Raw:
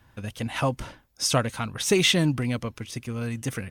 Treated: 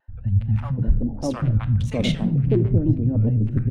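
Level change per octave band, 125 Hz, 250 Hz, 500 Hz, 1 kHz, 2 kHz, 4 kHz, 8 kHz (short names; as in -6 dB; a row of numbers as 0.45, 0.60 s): +11.0 dB, +5.5 dB, -0.5 dB, -6.5 dB, -10.0 dB, -9.5 dB, under -15 dB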